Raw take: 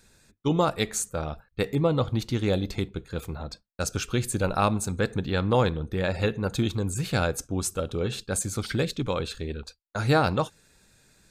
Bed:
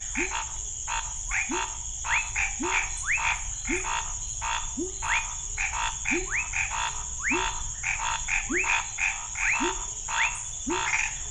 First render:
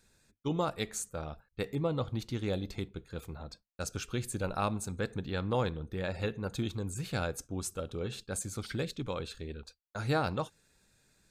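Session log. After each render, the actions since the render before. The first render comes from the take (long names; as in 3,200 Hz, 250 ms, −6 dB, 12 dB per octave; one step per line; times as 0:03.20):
level −8.5 dB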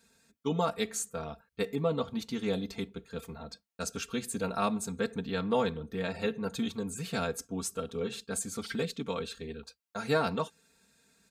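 high-pass filter 94 Hz 12 dB per octave
comb filter 4.4 ms, depth 91%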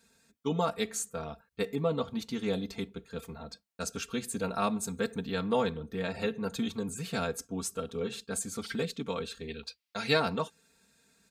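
0:04.83–0:05.56: high-shelf EQ 8,500 Hz +8 dB
0:06.17–0:06.89: multiband upward and downward compressor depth 40%
0:09.48–0:10.20: flat-topped bell 3,200 Hz +9 dB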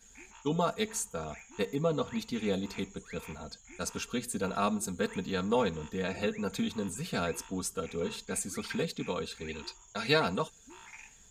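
mix in bed −24 dB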